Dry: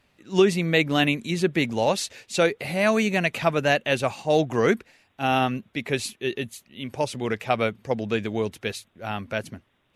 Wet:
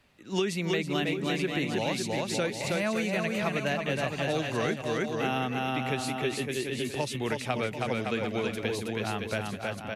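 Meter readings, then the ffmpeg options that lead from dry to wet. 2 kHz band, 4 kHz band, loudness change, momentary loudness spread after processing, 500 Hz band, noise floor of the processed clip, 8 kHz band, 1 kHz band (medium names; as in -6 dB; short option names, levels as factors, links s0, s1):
-5.5 dB, -4.0 dB, -5.5 dB, 3 LU, -6.5 dB, -40 dBFS, -3.5 dB, -6.0 dB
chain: -filter_complex "[0:a]aecho=1:1:320|560|740|875|976.2:0.631|0.398|0.251|0.158|0.1,acrossover=split=310|1300[s0][s1][s2];[s0]acompressor=threshold=0.0224:ratio=4[s3];[s1]acompressor=threshold=0.0224:ratio=4[s4];[s2]acompressor=threshold=0.02:ratio=4[s5];[s3][s4][s5]amix=inputs=3:normalize=0"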